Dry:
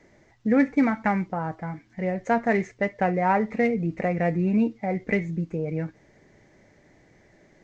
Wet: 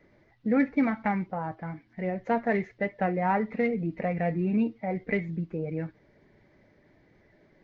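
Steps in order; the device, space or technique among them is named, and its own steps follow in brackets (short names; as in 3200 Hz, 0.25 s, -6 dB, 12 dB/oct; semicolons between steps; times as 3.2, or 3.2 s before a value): clip after many re-uploads (LPF 4500 Hz 24 dB/oct; bin magnitudes rounded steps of 15 dB); gain -3.5 dB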